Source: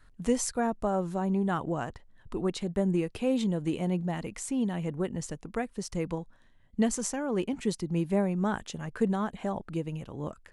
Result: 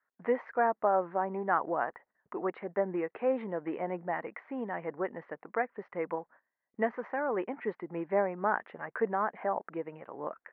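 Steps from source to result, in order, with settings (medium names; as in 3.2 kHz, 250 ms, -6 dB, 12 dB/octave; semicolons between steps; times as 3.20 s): elliptic low-pass 2 kHz, stop band 80 dB; gate -53 dBFS, range -19 dB; high-pass 560 Hz 12 dB/octave; trim +5.5 dB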